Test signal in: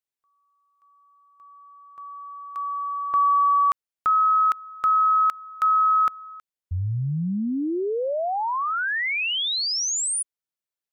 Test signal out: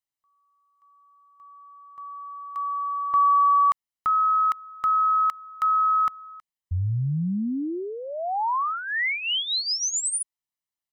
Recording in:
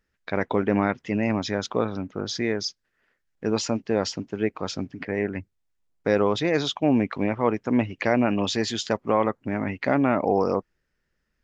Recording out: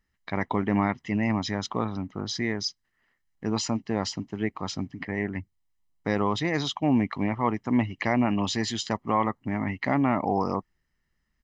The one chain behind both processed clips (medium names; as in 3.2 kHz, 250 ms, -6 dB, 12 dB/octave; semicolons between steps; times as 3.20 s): comb 1 ms, depth 55%; trim -2.5 dB